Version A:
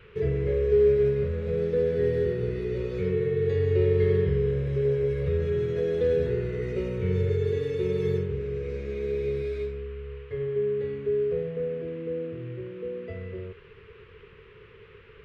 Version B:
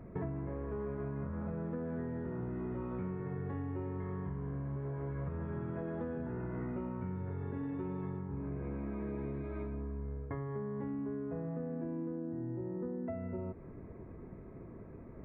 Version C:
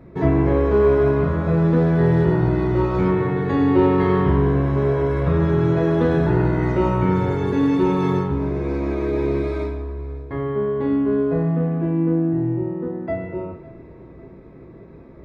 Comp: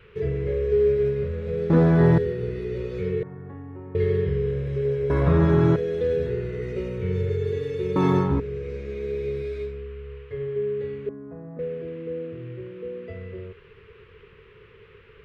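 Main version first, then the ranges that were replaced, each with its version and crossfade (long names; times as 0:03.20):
A
0:01.70–0:02.18: punch in from C
0:03.23–0:03.95: punch in from B
0:05.10–0:05.76: punch in from C
0:07.96–0:08.40: punch in from C
0:11.09–0:11.59: punch in from B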